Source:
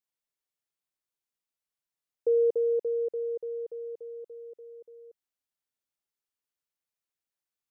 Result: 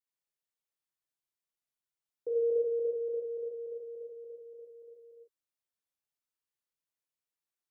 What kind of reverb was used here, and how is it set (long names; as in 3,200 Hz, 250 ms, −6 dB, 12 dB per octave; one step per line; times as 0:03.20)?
reverb whose tail is shaped and stops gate 180 ms flat, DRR −4.5 dB
level −9.5 dB